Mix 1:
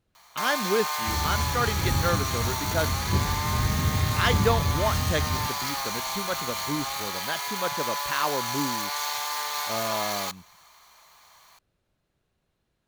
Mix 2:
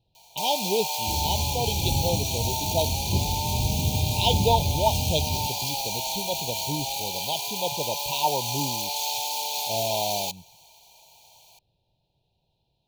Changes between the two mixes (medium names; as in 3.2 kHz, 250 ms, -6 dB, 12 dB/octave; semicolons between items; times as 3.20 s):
speech: add graphic EQ 125/250/1000/2000/4000/8000 Hz +7/-5/+10/-5/+12/-12 dB; first sound +3.5 dB; master: add Chebyshev band-stop 930–2400 Hz, order 5